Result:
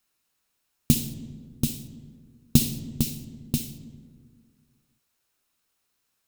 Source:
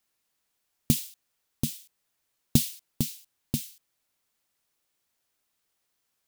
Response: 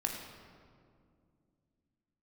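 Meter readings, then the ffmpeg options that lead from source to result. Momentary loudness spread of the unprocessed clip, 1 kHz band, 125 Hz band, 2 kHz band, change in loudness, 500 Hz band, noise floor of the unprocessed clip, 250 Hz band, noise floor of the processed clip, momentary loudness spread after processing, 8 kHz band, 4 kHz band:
18 LU, +2.0 dB, +4.0 dB, +3.5 dB, +2.5 dB, +2.5 dB, −78 dBFS, +4.5 dB, −76 dBFS, 18 LU, +2.0 dB, +2.5 dB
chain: -filter_complex "[0:a]asplit=2[link_01][link_02];[1:a]atrim=start_sample=2205,asetrate=66150,aresample=44100[link_03];[link_02][link_03]afir=irnorm=-1:irlink=0,volume=-3dB[link_04];[link_01][link_04]amix=inputs=2:normalize=0,volume=-1dB"

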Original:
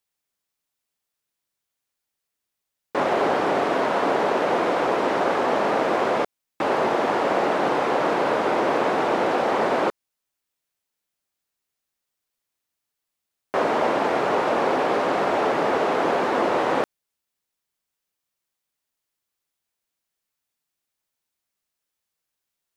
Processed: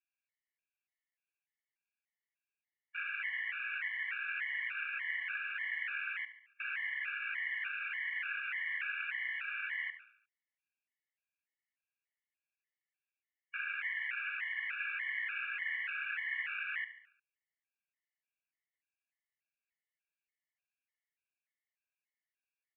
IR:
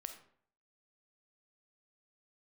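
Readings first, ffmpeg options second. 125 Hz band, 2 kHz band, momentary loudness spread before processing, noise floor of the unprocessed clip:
below −40 dB, −5.0 dB, 3 LU, −83 dBFS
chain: -filter_complex "[0:a]asuperpass=centerf=2100:order=8:qfactor=1.8,asplit=2[link_01][link_02];[link_02]aecho=0:1:71|142|213|284|355:0.237|0.119|0.0593|0.0296|0.0148[link_03];[link_01][link_03]amix=inputs=2:normalize=0,afftfilt=real='re*gt(sin(2*PI*1.7*pts/sr)*(1-2*mod(floor(b*sr/1024/570),2)),0)':imag='im*gt(sin(2*PI*1.7*pts/sr)*(1-2*mod(floor(b*sr/1024/570),2)),0)':win_size=1024:overlap=0.75"

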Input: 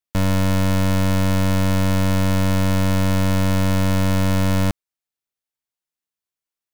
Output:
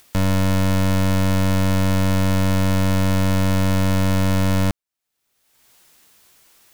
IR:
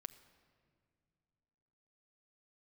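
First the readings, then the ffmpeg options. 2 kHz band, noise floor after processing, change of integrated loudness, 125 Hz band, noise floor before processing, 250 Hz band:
0.0 dB, −80 dBFS, 0.0 dB, 0.0 dB, below −85 dBFS, 0.0 dB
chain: -af "acompressor=mode=upward:threshold=-26dB:ratio=2.5"

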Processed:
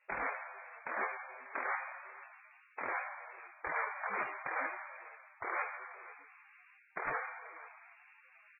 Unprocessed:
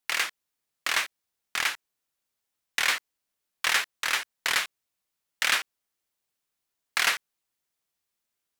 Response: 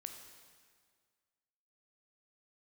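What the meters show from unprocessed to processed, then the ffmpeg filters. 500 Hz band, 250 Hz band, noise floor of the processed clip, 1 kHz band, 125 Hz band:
+1.0 dB, −1.5 dB, −64 dBFS, −3.0 dB, can't be measured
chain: -filter_complex "[0:a]aeval=exprs='val(0)+0.5*0.0178*sgn(val(0))':channel_layout=same,bandreject=frequency=337.6:width_type=h:width=4,bandreject=frequency=675.2:width_type=h:width=4,bandreject=frequency=1012.8:width_type=h:width=4,bandreject=frequency=1350.4:width_type=h:width=4,bandreject=frequency=1688:width_type=h:width=4,bandreject=frequency=2025.6:width_type=h:width=4,bandreject=frequency=2363.2:width_type=h:width=4,bandreject=frequency=2700.8:width_type=h:width=4,bandreject=frequency=3038.4:width_type=h:width=4,bandreject=frequency=3376:width_type=h:width=4,bandreject=frequency=3713.6:width_type=h:width=4,bandreject=frequency=4051.2:width_type=h:width=4,bandreject=frequency=4388.8:width_type=h:width=4,bandreject=frequency=4726.4:width_type=h:width=4,bandreject=frequency=5064:width_type=h:width=4,bandreject=frequency=5401.6:width_type=h:width=4,bandreject=frequency=5739.2:width_type=h:width=4,bandreject=frequency=6076.8:width_type=h:width=4,bandreject=frequency=6414.4:width_type=h:width=4,bandreject=frequency=6752:width_type=h:width=4,bandreject=frequency=7089.6:width_type=h:width=4,bandreject=frequency=7427.2:width_type=h:width=4,bandreject=frequency=7764.8:width_type=h:width=4,bandreject=frequency=8102.4:width_type=h:width=4,bandreject=frequency=8440:width_type=h:width=4,bandreject=frequency=8777.6:width_type=h:width=4,bandreject=frequency=9115.2:width_type=h:width=4,bandreject=frequency=9452.8:width_type=h:width=4,agate=range=-33dB:threshold=-27dB:ratio=3:detection=peak,equalizer=frequency=510:width_type=o:width=1.7:gain=7,areverse,acompressor=threshold=-33dB:ratio=10,areverse,alimiter=level_in=11.5dB:limit=-24dB:level=0:latency=1:release=472,volume=-11.5dB,acrossover=split=1600[link_01][link_02];[link_01]acontrast=62[link_03];[link_03][link_02]amix=inputs=2:normalize=0,asplit=2[link_04][link_05];[link_05]adelay=489.8,volume=-17dB,highshelf=frequency=4000:gain=-11[link_06];[link_04][link_06]amix=inputs=2:normalize=0[link_07];[1:a]atrim=start_sample=2205[link_08];[link_07][link_08]afir=irnorm=-1:irlink=0,acrusher=bits=6:mode=log:mix=0:aa=0.000001,lowpass=frequency=2400:width_type=q:width=0.5098,lowpass=frequency=2400:width_type=q:width=0.6013,lowpass=frequency=2400:width_type=q:width=0.9,lowpass=frequency=2400:width_type=q:width=2.563,afreqshift=-2800,volume=12dB" -ar 16000 -c:a libmp3lame -b:a 8k

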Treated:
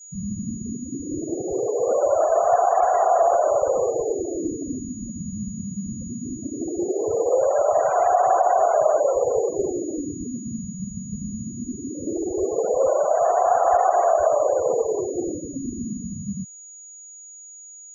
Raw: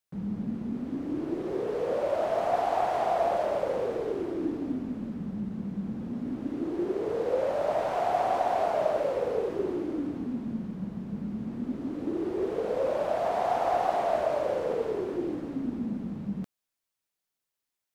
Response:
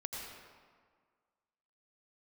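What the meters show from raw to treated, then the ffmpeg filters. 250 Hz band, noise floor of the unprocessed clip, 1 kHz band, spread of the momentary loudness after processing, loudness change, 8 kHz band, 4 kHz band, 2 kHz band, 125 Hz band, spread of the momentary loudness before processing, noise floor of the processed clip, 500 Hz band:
+2.5 dB, below −85 dBFS, +9.0 dB, 14 LU, +7.5 dB, can't be measured, below −35 dB, +2.5 dB, +4.5 dB, 8 LU, −43 dBFS, +8.0 dB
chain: -filter_complex "[0:a]aeval=exprs='val(0)+0.00282*sin(2*PI*6800*n/s)':channel_layout=same,equalizer=frequency=250:width=0.81:gain=-11.5,asplit=2[link_01][link_02];[link_02]alimiter=limit=-24dB:level=0:latency=1,volume=0dB[link_03];[link_01][link_03]amix=inputs=2:normalize=0,afftfilt=real='re*gte(hypot(re,im),0.0447)':imag='im*gte(hypot(re,im),0.0447)':win_size=1024:overlap=0.75,asuperstop=centerf=900:order=4:qfactor=7.7,volume=7dB"

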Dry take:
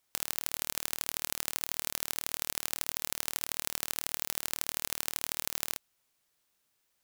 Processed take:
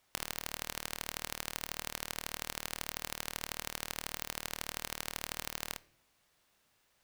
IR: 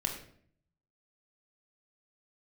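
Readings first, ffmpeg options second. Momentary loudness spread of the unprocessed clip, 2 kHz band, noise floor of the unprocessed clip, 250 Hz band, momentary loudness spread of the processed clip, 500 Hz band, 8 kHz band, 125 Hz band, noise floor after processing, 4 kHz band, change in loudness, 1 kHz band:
1 LU, −1.0 dB, −77 dBFS, −0.5 dB, 1 LU, −0.5 dB, −7.0 dB, 0.0 dB, −74 dBFS, −3.5 dB, −6.5 dB, −0.5 dB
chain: -filter_complex "[0:a]highshelf=frequency=5100:gain=-10,acompressor=threshold=-41dB:ratio=5,asplit=2[link_01][link_02];[1:a]atrim=start_sample=2205[link_03];[link_02][link_03]afir=irnorm=-1:irlink=0,volume=-17dB[link_04];[link_01][link_04]amix=inputs=2:normalize=0,volume=7.5dB"

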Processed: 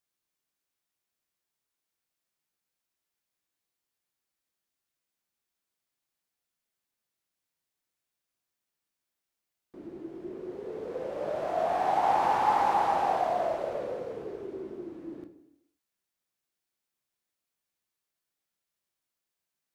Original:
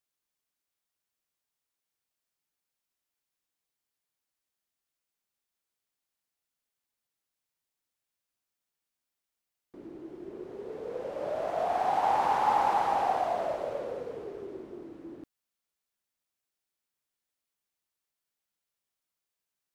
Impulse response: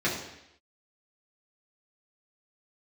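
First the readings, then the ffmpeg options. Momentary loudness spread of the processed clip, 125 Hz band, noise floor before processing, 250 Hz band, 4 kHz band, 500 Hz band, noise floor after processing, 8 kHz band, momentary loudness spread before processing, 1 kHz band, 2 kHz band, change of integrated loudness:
18 LU, +2.0 dB, below −85 dBFS, +3.0 dB, +0.5 dB, +1.5 dB, below −85 dBFS, can't be measured, 19 LU, +1.0 dB, +1.5 dB, +0.5 dB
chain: -filter_complex "[0:a]asplit=2[link_01][link_02];[1:a]atrim=start_sample=2205,adelay=14[link_03];[link_02][link_03]afir=irnorm=-1:irlink=0,volume=-17dB[link_04];[link_01][link_04]amix=inputs=2:normalize=0"

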